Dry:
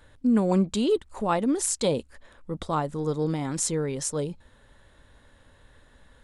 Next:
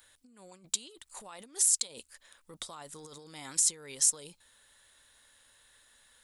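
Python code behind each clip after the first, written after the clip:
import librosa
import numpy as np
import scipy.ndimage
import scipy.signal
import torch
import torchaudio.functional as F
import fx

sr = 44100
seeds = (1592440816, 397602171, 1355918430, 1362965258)

y = fx.over_compress(x, sr, threshold_db=-30.0, ratio=-1.0)
y = librosa.effects.preemphasis(y, coef=0.97, zi=[0.0])
y = y * 10.0 ** (3.5 / 20.0)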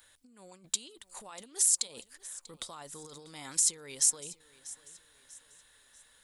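y = fx.echo_feedback(x, sr, ms=641, feedback_pct=41, wet_db=-19)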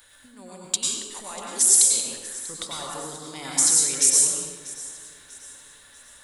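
y = fx.rev_plate(x, sr, seeds[0], rt60_s=1.2, hf_ratio=0.65, predelay_ms=85, drr_db=-3.5)
y = y * 10.0 ** (7.0 / 20.0)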